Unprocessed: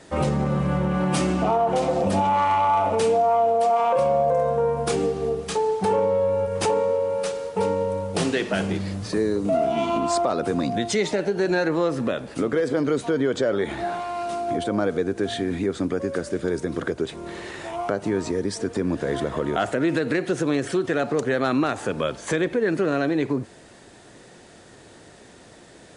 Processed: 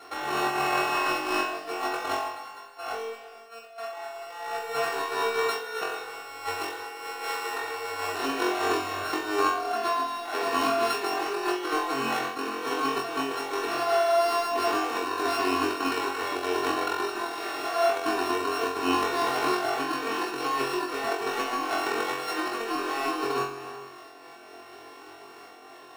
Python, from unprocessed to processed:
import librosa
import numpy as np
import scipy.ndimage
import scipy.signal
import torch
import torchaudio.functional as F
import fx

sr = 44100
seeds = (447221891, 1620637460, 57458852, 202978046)

p1 = np.r_[np.sort(x[:len(x) // 32 * 32].reshape(-1, 32), axis=1).ravel(), x[len(x) // 32 * 32:]]
p2 = scipy.signal.sosfilt(scipy.signal.butter(2, 800.0, 'highpass', fs=sr, output='sos'), p1)
p3 = fx.level_steps(p2, sr, step_db=21)
p4 = p2 + (p3 * 10.0 ** (1.5 / 20.0))
p5 = fx.tilt_eq(p4, sr, slope=-3.5)
p6 = fx.over_compress(p5, sr, threshold_db=-29.0, ratio=-0.5)
p7 = p6 + 0.93 * np.pad(p6, (int(2.7 * sr / 1000.0), 0))[:len(p6)]
p8 = p7 + fx.room_flutter(p7, sr, wall_m=3.8, rt60_s=0.58, dry=0)
p9 = fx.rev_gated(p8, sr, seeds[0], gate_ms=470, shape='flat', drr_db=11.0)
p10 = fx.am_noise(p9, sr, seeds[1], hz=5.7, depth_pct=55)
y = p10 * 10.0 ** (-1.5 / 20.0)